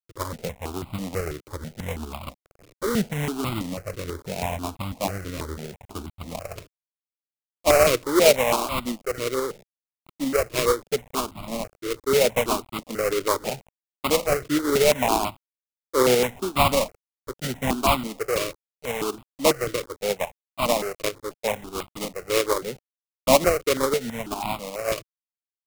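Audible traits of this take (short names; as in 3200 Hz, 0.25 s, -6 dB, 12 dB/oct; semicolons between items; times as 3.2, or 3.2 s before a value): a quantiser's noise floor 8-bit, dither none; tremolo saw up 8.3 Hz, depth 40%; aliases and images of a low sample rate 1700 Hz, jitter 20%; notches that jump at a steady rate 6.1 Hz 220–1700 Hz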